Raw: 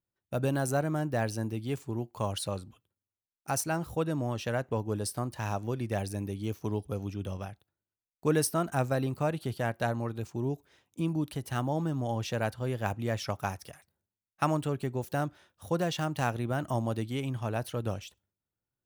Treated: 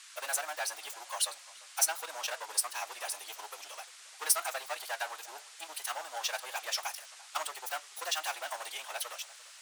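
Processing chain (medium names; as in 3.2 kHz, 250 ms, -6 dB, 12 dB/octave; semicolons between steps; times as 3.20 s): waveshaping leveller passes 3; inverse Chebyshev high-pass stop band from 170 Hz, stop band 70 dB; treble shelf 3 kHz +10.5 dB; reverse; upward compressor, threshold -41 dBFS; reverse; time stretch by phase-locked vocoder 0.51×; band noise 1.1–9.3 kHz -45 dBFS; flange 1.7 Hz, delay 5.3 ms, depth 1.3 ms, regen -74%; on a send: tape echo 345 ms, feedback 43%, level -18 dB, low-pass 2.4 kHz; on the sum: trim -3.5 dB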